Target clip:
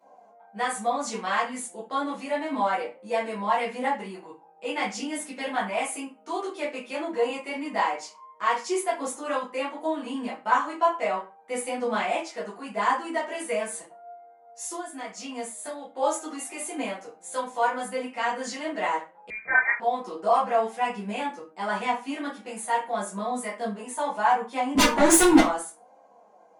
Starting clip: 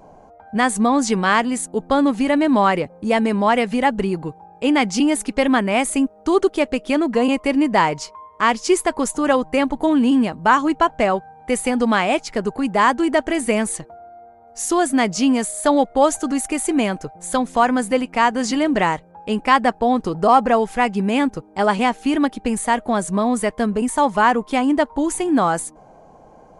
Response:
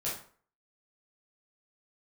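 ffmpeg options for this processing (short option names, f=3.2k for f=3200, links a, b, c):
-filter_complex "[0:a]highpass=460,asettb=1/sr,asplit=3[a][b][c];[a]atrim=end=14.674[d];[b]atrim=start=14.67:end=15.95,asetpts=PTS-STARTPTS,afade=t=in:d=0.004:c=qsin,afade=t=out:st=1.276:d=0.004:c=qsin,acompressor=threshold=-25dB:ratio=6[e];[c]atrim=start=15.946[f];[d][e]acrossfade=d=0.004:c1=hsin:c2=qsin[g];[g][f]acrossfade=d=0.004:c1=qsin:c2=hsin,asettb=1/sr,asplit=3[h][i][j];[h]atrim=end=24.754[k];[i]atrim=start=24.75:end=25.39,asetpts=PTS-STARTPTS,afade=t=in:d=0.004:c=qsin,afade=t=out:st=0.636:d=0.004:c=qsin,aeval=exprs='0.562*sin(PI/2*7.94*val(0)/0.562)':c=same[l];[j]atrim=start=25.386[m];[k][l]acrossfade=d=0.004:c1=hsin:c2=qsin[n];[n][m]acrossfade=d=0.004:c1=qsin:c2=hsin,flanger=delay=3.7:depth=2.7:regen=41:speed=0.77:shape=sinusoidal[o];[1:a]atrim=start_sample=2205,asetrate=66150,aresample=44100[p];[o][p]afir=irnorm=-1:irlink=0,asettb=1/sr,asplit=3[q][r][s];[q]atrim=end=19.304[t];[r]atrim=start=19.3:end=19.8,asetpts=PTS-STARTPTS,afade=t=in:d=0.004:c=qsin,afade=t=out:st=0.496:d=0.004:c=qsin,lowpass=f=2.2k:t=q:w=0.5098,lowpass=f=2.2k:t=q:w=0.6013,lowpass=f=2.2k:t=q:w=0.9,lowpass=f=2.2k:t=q:w=2.563,afreqshift=-2600[u];[s]atrim=start=19.796[v];[t][u]acrossfade=d=0.004:c1=hsin:c2=qsin[w];[w][v]acrossfade=d=0.004:c1=qsin:c2=hsin,volume=-5dB"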